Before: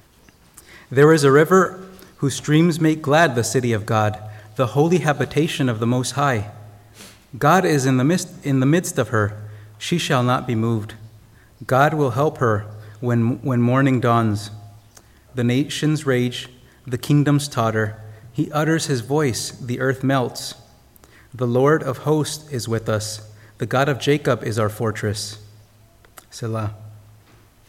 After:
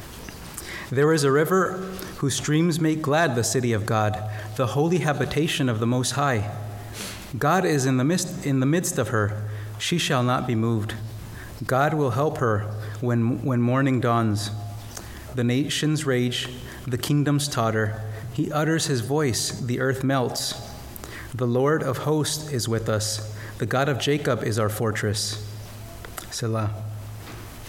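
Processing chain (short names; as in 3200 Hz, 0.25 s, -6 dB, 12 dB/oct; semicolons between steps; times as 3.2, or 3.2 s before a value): fast leveller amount 50%; gain -8 dB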